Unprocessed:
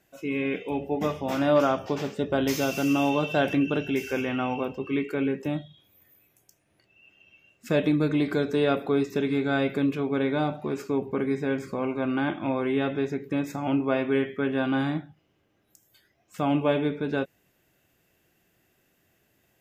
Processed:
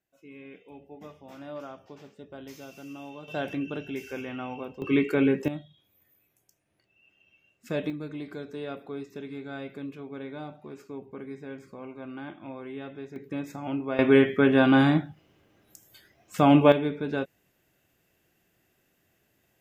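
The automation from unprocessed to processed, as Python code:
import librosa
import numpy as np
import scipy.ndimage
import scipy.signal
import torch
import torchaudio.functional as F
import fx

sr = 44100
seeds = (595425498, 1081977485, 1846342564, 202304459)

y = fx.gain(x, sr, db=fx.steps((0.0, -18.5), (3.28, -8.0), (4.82, 4.0), (5.48, -6.5), (7.9, -13.0), (13.16, -6.0), (13.99, 6.5), (16.72, -2.0)))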